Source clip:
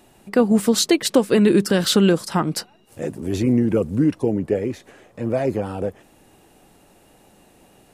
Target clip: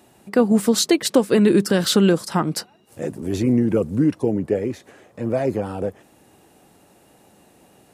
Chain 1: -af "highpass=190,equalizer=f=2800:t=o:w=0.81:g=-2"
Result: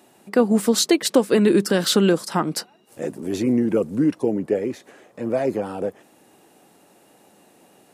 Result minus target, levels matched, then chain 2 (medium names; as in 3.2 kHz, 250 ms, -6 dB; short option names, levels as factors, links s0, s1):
125 Hz band -3.5 dB
-af "highpass=71,equalizer=f=2800:t=o:w=0.81:g=-2"